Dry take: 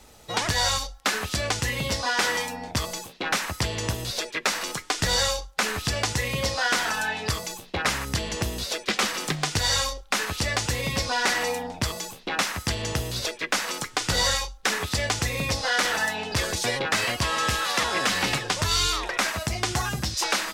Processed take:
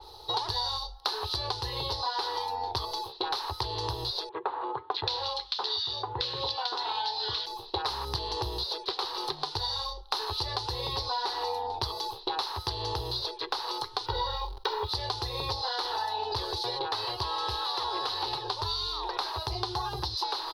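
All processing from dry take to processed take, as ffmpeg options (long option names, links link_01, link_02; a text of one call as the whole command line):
ffmpeg -i in.wav -filter_complex "[0:a]asettb=1/sr,asplit=3[link_01][link_02][link_03];[link_01]atrim=end=4.294[link_04];[link_02]atrim=start=4.29:end=7.46,asetpts=PTS-STARTPTS,afade=type=in:duration=0.004:curve=qsin,afade=type=out:start_time=3.166:duration=0.004:curve=qsin,highpass=110,lowpass=5100,equalizer=frequency=3300:width_type=o:width=1.1:gain=7.5,acrossover=split=1600[link_05][link_06];[link_06]adelay=620[link_07];[link_05][link_07]amix=inputs=2:normalize=0,atrim=end_sample=139797[link_08];[link_03]atrim=start=7.456[link_09];[link_04][link_08]acrossfade=duration=0.004:curve1=hsin:curve2=qsin[link_10];[link_10][link_09]acrossfade=duration=0.004:curve1=qsin:curve2=hsin,asettb=1/sr,asplit=3[link_11][link_12][link_13];[link_11]atrim=end=14.064[link_14];[link_12]atrim=start=14.06:end=14.89,asetpts=PTS-STARTPTS,afade=type=in:duration=0.004:curve=qsin,afade=type=out:start_time=0.826:duration=0.004:curve=qsin,lowpass=2900,aecho=1:1:2.1:0.69,atrim=end_sample=36603,acrusher=bits=8:dc=4:mix=0:aa=0.000001[link_15];[link_13]atrim=start=14.886[link_16];[link_14][link_15]acrossfade=duration=0.004:curve1=hsin:curve2=qsin[link_17];[link_17][link_16]acrossfade=duration=0.004:curve1=qsin:curve2=hsin,firequalizer=gain_entry='entry(110,0);entry(200,-26);entry(380,8);entry(610,-6);entry(870,12);entry(1400,-5);entry(2200,-15);entry(4100,14);entry(7300,-20);entry(10000,-5)':delay=0.05:min_phase=1,acompressor=threshold=-28dB:ratio=6,adynamicequalizer=threshold=0.00631:dfrequency=3900:dqfactor=0.7:tfrequency=3900:tqfactor=0.7:attack=5:release=100:ratio=0.375:range=2.5:mode=cutabove:tftype=highshelf" out.wav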